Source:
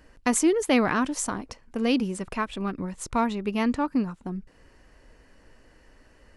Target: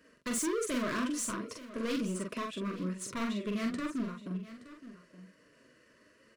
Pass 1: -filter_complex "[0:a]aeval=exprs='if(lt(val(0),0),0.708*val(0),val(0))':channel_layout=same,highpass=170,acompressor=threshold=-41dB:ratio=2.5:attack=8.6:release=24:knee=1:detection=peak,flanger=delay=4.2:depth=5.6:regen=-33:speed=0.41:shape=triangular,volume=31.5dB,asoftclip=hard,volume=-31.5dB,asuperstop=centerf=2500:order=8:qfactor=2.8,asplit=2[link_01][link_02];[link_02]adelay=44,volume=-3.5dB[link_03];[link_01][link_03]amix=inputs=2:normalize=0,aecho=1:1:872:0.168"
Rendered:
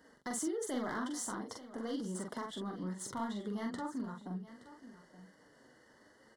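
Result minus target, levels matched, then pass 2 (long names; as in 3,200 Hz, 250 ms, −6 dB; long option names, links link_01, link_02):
downward compressor: peak gain reduction +14 dB; 1,000 Hz band +3.0 dB
-filter_complex "[0:a]aeval=exprs='if(lt(val(0),0),0.708*val(0),val(0))':channel_layout=same,highpass=170,flanger=delay=4.2:depth=5.6:regen=-33:speed=0.41:shape=triangular,volume=31.5dB,asoftclip=hard,volume=-31.5dB,asuperstop=centerf=810:order=8:qfactor=2.8,asplit=2[link_01][link_02];[link_02]adelay=44,volume=-3.5dB[link_03];[link_01][link_03]amix=inputs=2:normalize=0,aecho=1:1:872:0.168"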